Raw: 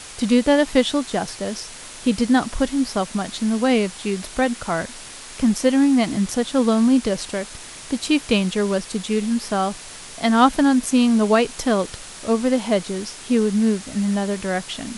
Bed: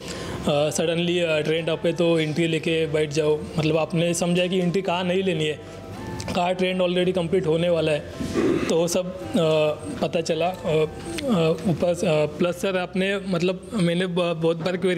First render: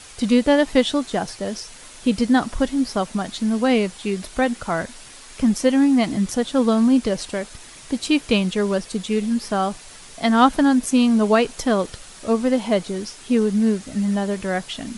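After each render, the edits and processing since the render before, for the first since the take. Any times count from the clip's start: noise reduction 6 dB, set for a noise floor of -38 dBFS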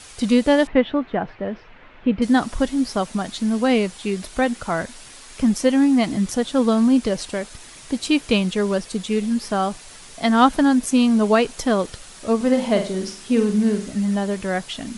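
0.67–2.22 s: low-pass 2.5 kHz 24 dB/octave; 12.36–13.92 s: flutter echo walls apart 8.2 m, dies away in 0.4 s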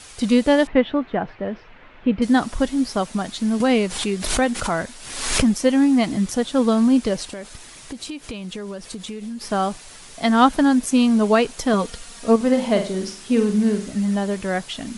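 3.60–5.54 s: swell ahead of each attack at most 57 dB/s; 7.33–9.41 s: compression 10:1, threshold -28 dBFS; 11.73–12.36 s: comb 4.3 ms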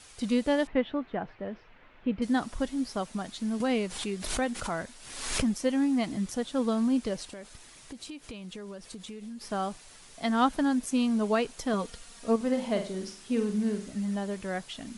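trim -10 dB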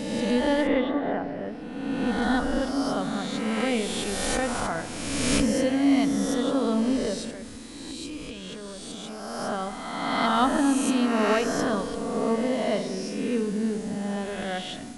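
reverse spectral sustain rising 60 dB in 1.75 s; FDN reverb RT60 1.8 s, low-frequency decay 1.55×, high-frequency decay 0.35×, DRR 9 dB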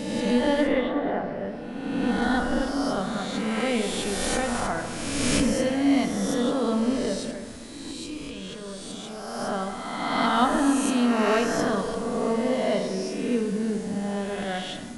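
plate-style reverb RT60 1.6 s, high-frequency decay 0.45×, pre-delay 0 ms, DRR 7 dB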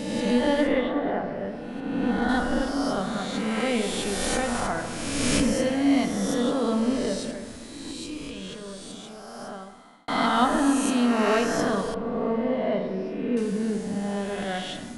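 1.80–2.29 s: treble shelf 3.7 kHz -10 dB; 8.46–10.08 s: fade out; 11.94–13.37 s: distance through air 410 m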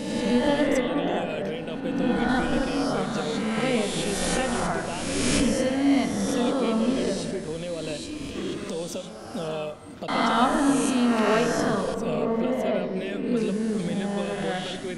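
add bed -11.5 dB

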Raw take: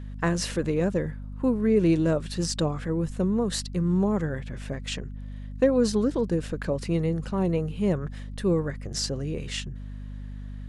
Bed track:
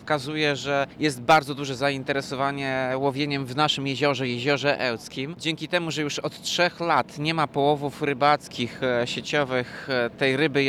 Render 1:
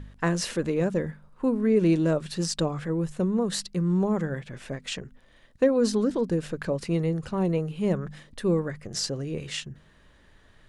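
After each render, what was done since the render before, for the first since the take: de-hum 50 Hz, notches 5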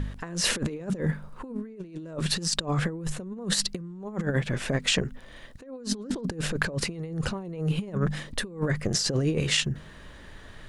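in parallel at -2.5 dB: peak limiter -21 dBFS, peak gain reduction 11.5 dB; on the sum: compressor with a negative ratio -28 dBFS, ratio -0.5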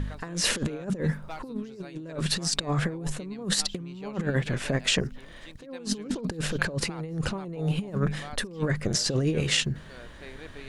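add bed track -23.5 dB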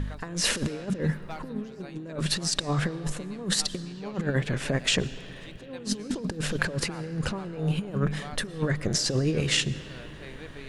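algorithmic reverb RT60 4.8 s, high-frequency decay 0.45×, pre-delay 75 ms, DRR 15.5 dB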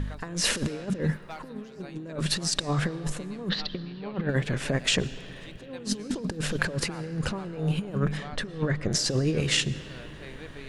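1.16–1.75 s: bass shelf 330 Hz -8 dB; 3.49–4.29 s: steep low-pass 4.2 kHz; 8.17–8.92 s: distance through air 84 m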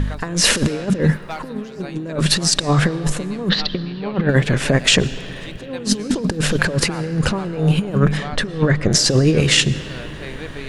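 trim +11 dB; peak limiter -2 dBFS, peak gain reduction 3 dB

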